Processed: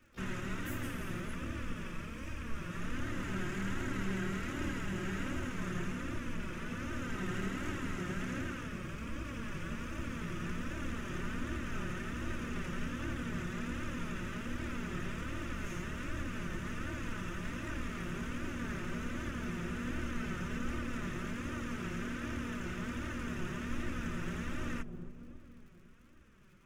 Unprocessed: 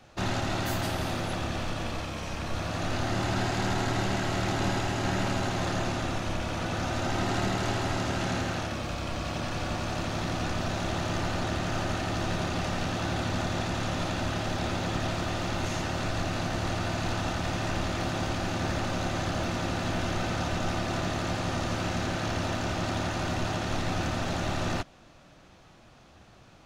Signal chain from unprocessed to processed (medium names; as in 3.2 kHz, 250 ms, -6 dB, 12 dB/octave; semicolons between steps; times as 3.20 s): static phaser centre 1.8 kHz, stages 4; feedback echo behind a low-pass 276 ms, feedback 55%, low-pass 530 Hz, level -7 dB; crackle 94 per s -51 dBFS; flange 1.3 Hz, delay 3.1 ms, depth 2.6 ms, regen +12%; harmony voices +12 st -16 dB; trim -3.5 dB